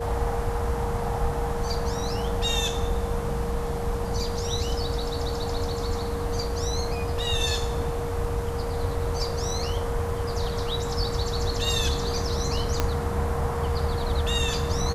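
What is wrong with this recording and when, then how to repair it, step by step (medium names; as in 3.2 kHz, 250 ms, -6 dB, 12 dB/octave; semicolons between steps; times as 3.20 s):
whine 470 Hz -31 dBFS
12.80 s: pop -8 dBFS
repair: de-click; band-stop 470 Hz, Q 30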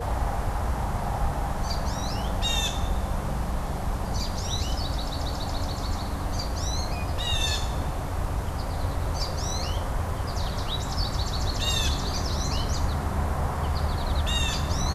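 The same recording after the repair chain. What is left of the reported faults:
12.80 s: pop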